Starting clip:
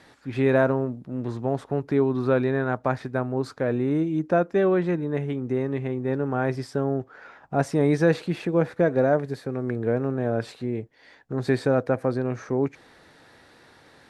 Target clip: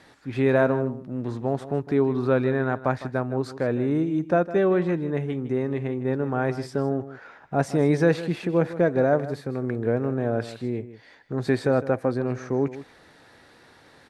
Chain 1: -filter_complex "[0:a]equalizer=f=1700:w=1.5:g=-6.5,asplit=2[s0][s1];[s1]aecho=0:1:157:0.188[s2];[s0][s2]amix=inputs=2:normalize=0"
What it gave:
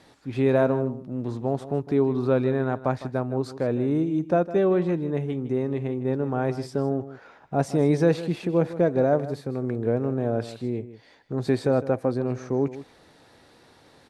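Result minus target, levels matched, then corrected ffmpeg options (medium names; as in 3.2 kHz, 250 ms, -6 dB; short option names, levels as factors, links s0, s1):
2 kHz band -5.5 dB
-filter_complex "[0:a]asplit=2[s0][s1];[s1]aecho=0:1:157:0.188[s2];[s0][s2]amix=inputs=2:normalize=0"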